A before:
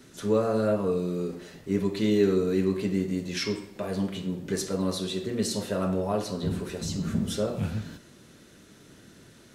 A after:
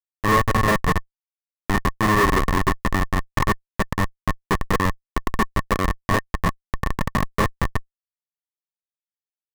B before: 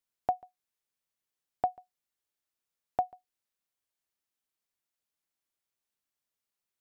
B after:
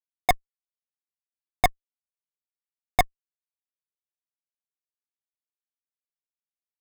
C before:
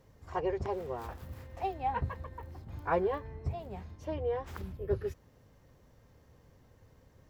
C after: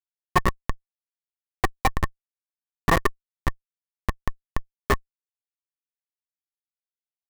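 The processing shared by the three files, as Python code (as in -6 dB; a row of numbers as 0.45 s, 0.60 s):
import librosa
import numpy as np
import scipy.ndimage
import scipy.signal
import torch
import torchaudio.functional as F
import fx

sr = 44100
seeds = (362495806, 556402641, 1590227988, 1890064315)

y = fx.transient(x, sr, attack_db=8, sustain_db=-4)
y = fx.schmitt(y, sr, flips_db=-20.5)
y = fx.small_body(y, sr, hz=(1100.0, 1800.0), ring_ms=30, db=18)
y = librosa.util.normalize(y) * 10.0 ** (-6 / 20.0)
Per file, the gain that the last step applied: +7.5 dB, +19.0 dB, +14.5 dB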